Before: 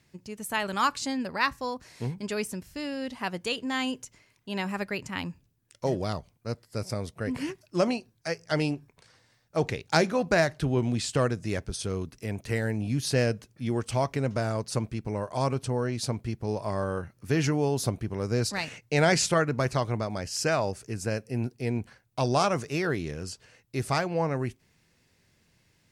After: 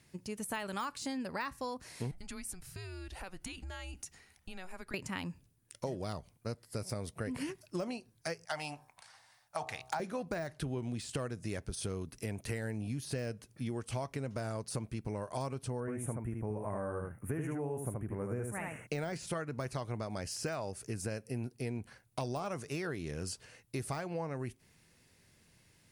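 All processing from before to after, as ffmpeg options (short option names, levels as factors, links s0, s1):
-filter_complex "[0:a]asettb=1/sr,asplit=3[s0][s1][s2];[s0]atrim=end=2.114[s3];[s1]atrim=start=2.11:end=4.94,asetpts=PTS-STARTPTS,afade=t=in:d=0.004:c=qsin,afade=t=out:st=2.826:d=0.004:c=qsin,acompressor=threshold=0.01:ratio=12:attack=3.2:release=140:knee=1:detection=peak,afreqshift=-190[s4];[s2]atrim=start=4.936[s5];[s3][s4]acrossfade=d=0.004:c1=hsin:c2=qsin[s6];[s6][s5]acrossfade=d=0.004:c1=qsin:c2=hsin,asettb=1/sr,asplit=3[s7][s8][s9];[s7]atrim=end=8.454[s10];[s8]atrim=start=8.45:end=10,asetpts=PTS-STARTPTS,afade=t=in:d=0.004:c=qsin,afade=t=out:st=1.546:d=0.004:c=qsin,lowshelf=f=560:t=q:w=3:g=-11,bandreject=f=64.05:t=h:w=4,bandreject=f=128.1:t=h:w=4,bandreject=f=192.15:t=h:w=4,bandreject=f=256.2:t=h:w=4,bandreject=f=320.25:t=h:w=4,bandreject=f=384.3:t=h:w=4,bandreject=f=448.35:t=h:w=4,bandreject=f=512.4:t=h:w=4,bandreject=f=576.45:t=h:w=4,bandreject=f=640.5:t=h:w=4,bandreject=f=704.55:t=h:w=4,bandreject=f=768.6:t=h:w=4,bandreject=f=832.65:t=h:w=4,bandreject=f=896.7:t=h:w=4,bandreject=f=960.75:t=h:w=4,bandreject=f=1024.8:t=h:w=4,bandreject=f=1088.85:t=h:w=4,bandreject=f=1152.9:t=h:w=4,bandreject=f=1216.95:t=h:w=4,bandreject=f=1281:t=h:w=4[s11];[s9]atrim=start=9.996[s12];[s10][s11]acrossfade=d=0.004:c1=hsin:c2=qsin[s13];[s13][s12]acrossfade=d=0.004:c1=qsin:c2=hsin,asettb=1/sr,asplit=3[s14][s15][s16];[s14]atrim=end=15.804[s17];[s15]atrim=start=15.8:end=18.87,asetpts=PTS-STARTPTS,afade=t=in:d=0.004:c=qsin,afade=t=out:st=3.066:d=0.004:c=qsin,asuperstop=centerf=4500:order=4:qfactor=0.6,aecho=1:1:76:0.631,atrim=end_sample=135387[s18];[s16]atrim=start=18.866[s19];[s17][s18]acrossfade=d=0.004:c1=hsin:c2=qsin[s20];[s20][s19]acrossfade=d=0.004:c1=qsin:c2=hsin,deesser=0.8,equalizer=f=9800:t=o:w=0.39:g=9,acompressor=threshold=0.0178:ratio=6"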